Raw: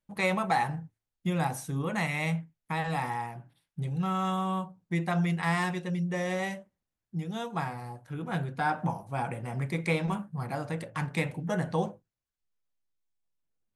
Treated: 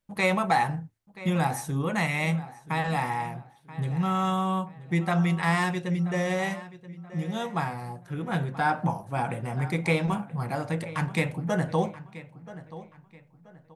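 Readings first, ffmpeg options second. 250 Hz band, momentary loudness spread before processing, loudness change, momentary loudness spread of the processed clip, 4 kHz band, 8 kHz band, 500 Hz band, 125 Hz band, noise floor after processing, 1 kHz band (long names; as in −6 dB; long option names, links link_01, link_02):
+3.5 dB, 9 LU, +3.5 dB, 16 LU, +3.5 dB, +3.5 dB, +3.5 dB, +3.5 dB, −58 dBFS, +3.5 dB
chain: -filter_complex "[0:a]asplit=2[link_01][link_02];[link_02]adelay=980,lowpass=frequency=4000:poles=1,volume=-16dB,asplit=2[link_03][link_04];[link_04]adelay=980,lowpass=frequency=4000:poles=1,volume=0.33,asplit=2[link_05][link_06];[link_06]adelay=980,lowpass=frequency=4000:poles=1,volume=0.33[link_07];[link_01][link_03][link_05][link_07]amix=inputs=4:normalize=0,volume=3.5dB"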